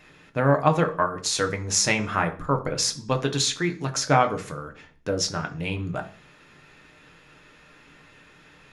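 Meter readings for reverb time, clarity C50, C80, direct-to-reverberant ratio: 0.45 s, 15.0 dB, 19.5 dB, 4.5 dB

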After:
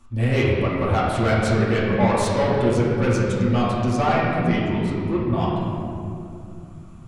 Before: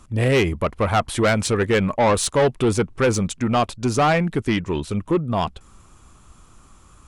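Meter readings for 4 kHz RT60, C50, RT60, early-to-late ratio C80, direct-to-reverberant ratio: 1.4 s, -1.0 dB, 2.6 s, 0.5 dB, -8.5 dB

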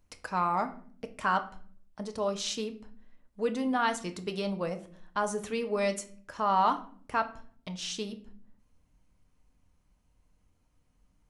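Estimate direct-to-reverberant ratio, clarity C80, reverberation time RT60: 6.5 dB, 18.5 dB, 0.50 s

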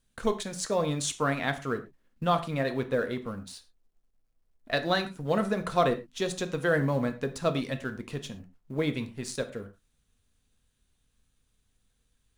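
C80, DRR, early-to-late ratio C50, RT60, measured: 18.0 dB, 7.5 dB, 14.0 dB, not exponential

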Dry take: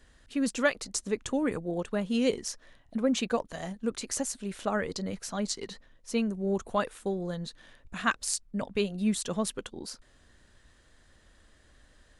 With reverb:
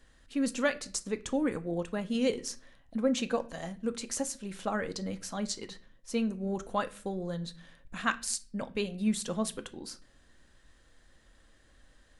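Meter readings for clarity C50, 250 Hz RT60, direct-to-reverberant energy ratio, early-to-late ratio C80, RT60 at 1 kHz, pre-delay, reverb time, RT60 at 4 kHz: 19.0 dB, 0.65 s, 9.5 dB, 23.5 dB, 0.35 s, 4 ms, 0.40 s, 0.35 s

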